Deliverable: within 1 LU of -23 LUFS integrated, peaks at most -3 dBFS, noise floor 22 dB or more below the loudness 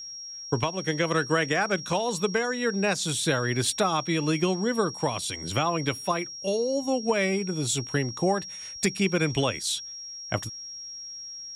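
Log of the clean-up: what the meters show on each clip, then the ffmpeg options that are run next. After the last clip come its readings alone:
steady tone 5600 Hz; tone level -37 dBFS; loudness -27.0 LUFS; peak -12.5 dBFS; loudness target -23.0 LUFS
-> -af "bandreject=f=5.6k:w=30"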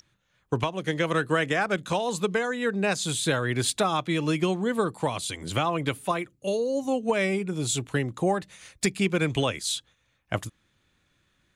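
steady tone none; loudness -27.0 LUFS; peak -13.0 dBFS; loudness target -23.0 LUFS
-> -af "volume=4dB"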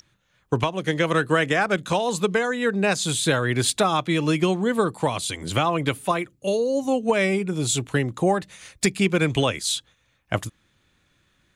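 loudness -23.0 LUFS; peak -9.0 dBFS; noise floor -66 dBFS

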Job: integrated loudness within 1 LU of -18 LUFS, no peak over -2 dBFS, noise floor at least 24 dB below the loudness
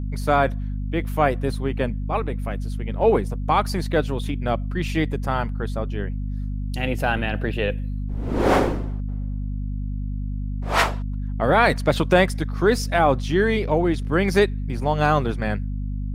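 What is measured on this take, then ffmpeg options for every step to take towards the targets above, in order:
hum 50 Hz; harmonics up to 250 Hz; hum level -24 dBFS; loudness -23.0 LUFS; peak -4.0 dBFS; loudness target -18.0 LUFS
-> -af "bandreject=f=50:t=h:w=4,bandreject=f=100:t=h:w=4,bandreject=f=150:t=h:w=4,bandreject=f=200:t=h:w=4,bandreject=f=250:t=h:w=4"
-af "volume=5dB,alimiter=limit=-2dB:level=0:latency=1"

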